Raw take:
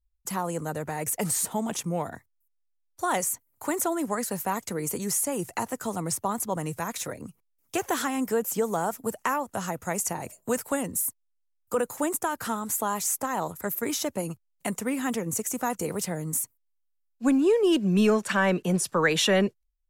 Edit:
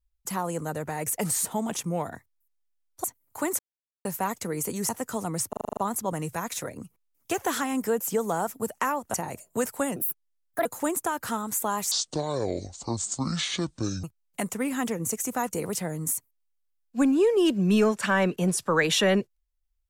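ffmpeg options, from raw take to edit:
-filter_complex "[0:a]asplit=17[a][b][c][d][e][f][g][h][i][j][k][l][m][n][o][p][q];[a]atrim=end=3.042[r];[b]atrim=start=3.298:end=3.85,asetpts=PTS-STARTPTS,afade=t=out:st=0.548:d=0.004:c=hsin[s];[c]atrim=start=3.85:end=4.31,asetpts=PTS-STARTPTS,volume=0[t];[d]atrim=start=4.31:end=5.152,asetpts=PTS-STARTPTS,afade=t=in:d=0.004:c=hsin[u];[e]atrim=start=5.608:end=6.252[v];[f]atrim=start=6.208:end=6.252[w];[g]atrim=start=6.208:end=6.252[x];[h]atrim=start=6.208:end=6.252[y];[i]atrim=start=6.208:end=6.252[z];[j]atrim=start=6.208:end=6.252[aa];[k]atrim=start=6.208:end=6.252[ab];[l]atrim=start=6.208:end=9.582[ac];[m]atrim=start=10.058:end=10.884[ad];[n]atrim=start=10.88:end=11.83,asetpts=PTS-STARTPTS,asetrate=60417,aresample=44100,atrim=end_sample=30580,asetpts=PTS-STARTPTS[ae];[o]atrim=start=11.826:end=13.094[af];[p]atrim=start=13.09:end=14.3,asetpts=PTS-STARTPTS,asetrate=25137,aresample=44100[ag];[q]atrim=start=14.296[ah];[s][t][u]concat=n=3:v=0:a=1[ai];[r][ai]acrossfade=d=0.004:c1=hsin:c2=hsin[aj];[aj][v]acrossfade=d=0.004:c1=hsin:c2=hsin[ak];[ak][w]acrossfade=d=0.004:c1=hsin:c2=hsin[al];[al][x]acrossfade=d=0.004:c1=hsin:c2=hsin[am];[am][y]acrossfade=d=0.004:c1=hsin:c2=hsin[an];[an][z]acrossfade=d=0.004:c1=hsin:c2=hsin[ao];[ao][aa]acrossfade=d=0.004:c1=hsin:c2=hsin[ap];[ap][ab]acrossfade=d=0.004:c1=hsin:c2=hsin[aq];[aq][ac]acrossfade=d=0.004:c1=hsin:c2=hsin[ar];[ar][ad]acrossfade=d=0.004:c1=hsin:c2=hsin[as];[as][ae]acrossfade=d=0.004:c1=hsin:c2=hsin[at];[at][af]acrossfade=d=0.004:c1=hsin:c2=hsin[au];[au][ag]acrossfade=d=0.004:c1=hsin:c2=hsin[av];[av][ah]acrossfade=d=0.004:c1=hsin:c2=hsin"

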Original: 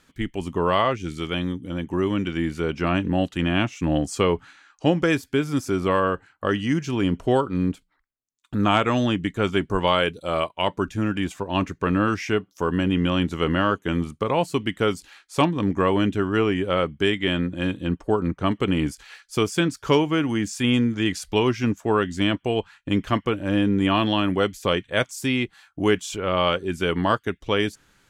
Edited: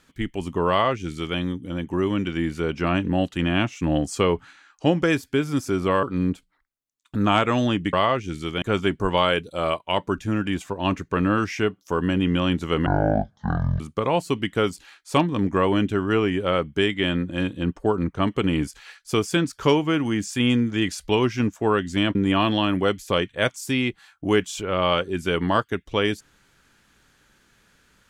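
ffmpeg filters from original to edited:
-filter_complex "[0:a]asplit=7[a][b][c][d][e][f][g];[a]atrim=end=6.032[h];[b]atrim=start=7.418:end=9.322[i];[c]atrim=start=0.688:end=1.382[j];[d]atrim=start=9.318:end=13.564[k];[e]atrim=start=13.56:end=14.04,asetpts=PTS-STARTPTS,asetrate=22491,aresample=44100[l];[f]atrim=start=14.036:end=22.392[m];[g]atrim=start=23.698[n];[h][i]acrossfade=d=0.004:c1=hsin:c2=hsin[o];[o][j]acrossfade=d=0.004:c1=hsin:c2=hsin[p];[p][k]acrossfade=d=0.004:c1=hsin:c2=hsin[q];[q][l]acrossfade=d=0.004:c1=hsin:c2=hsin[r];[r][m]acrossfade=d=0.004:c1=hsin:c2=hsin[s];[s][n]acrossfade=d=0.004:c1=hsin:c2=hsin"

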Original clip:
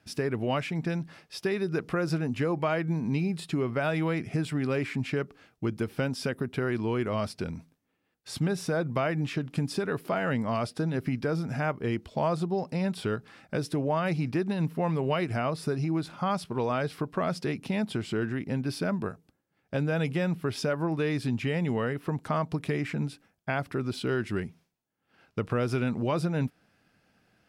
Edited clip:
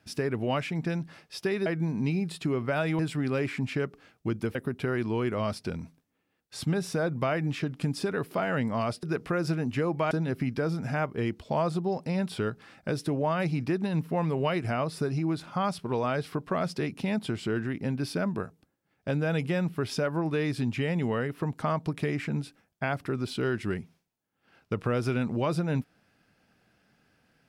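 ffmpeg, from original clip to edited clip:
-filter_complex "[0:a]asplit=6[a][b][c][d][e][f];[a]atrim=end=1.662[g];[b]atrim=start=2.738:end=4.072[h];[c]atrim=start=4.358:end=5.922[i];[d]atrim=start=6.288:end=10.772[j];[e]atrim=start=1.658:end=2.742[k];[f]atrim=start=10.768[l];[g][h]acrossfade=d=0.004:c1=hsin:c2=hsin[m];[m][i]acrossfade=d=0.004:c1=hsin:c2=hsin[n];[n][j]acrossfade=d=0.004:c1=hsin:c2=hsin[o];[o][k]acrossfade=d=0.004:c1=hsin:c2=hsin[p];[p][l]acrossfade=d=0.004:c1=hsin:c2=hsin"

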